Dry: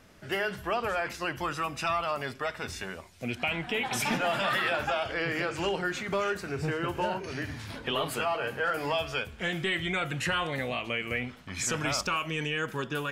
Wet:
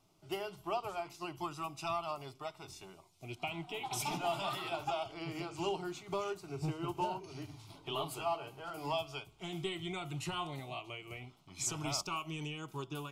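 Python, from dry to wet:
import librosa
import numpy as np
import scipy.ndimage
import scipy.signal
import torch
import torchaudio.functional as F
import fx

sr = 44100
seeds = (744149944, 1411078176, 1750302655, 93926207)

y = fx.fixed_phaser(x, sr, hz=340.0, stages=8)
y = fx.upward_expand(y, sr, threshold_db=-44.0, expansion=1.5)
y = F.gain(torch.from_numpy(y), -2.5).numpy()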